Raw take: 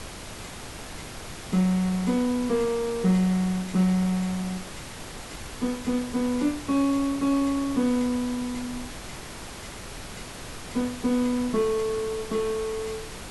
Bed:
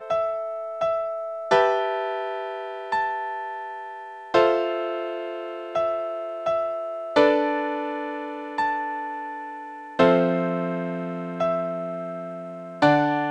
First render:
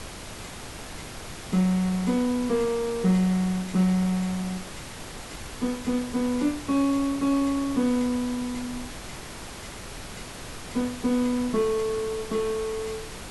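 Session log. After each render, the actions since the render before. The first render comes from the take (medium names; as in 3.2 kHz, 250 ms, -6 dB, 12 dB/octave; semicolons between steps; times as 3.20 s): no audible change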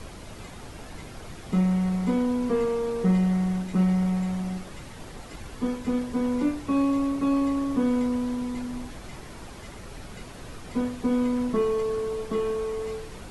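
noise reduction 8 dB, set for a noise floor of -40 dBFS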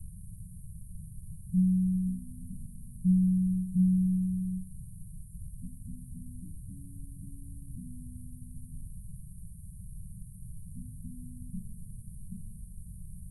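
Chebyshev band-stop 180–9200 Hz, order 5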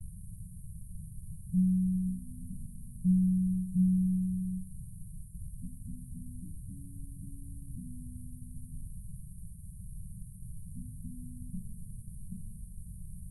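expander -44 dBFS; dynamic bell 230 Hz, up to -5 dB, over -44 dBFS, Q 3.1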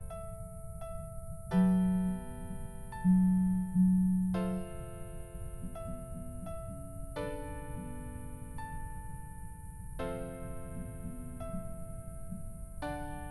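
add bed -22 dB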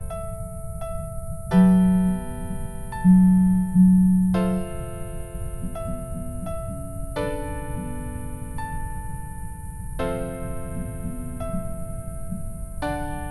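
trim +11.5 dB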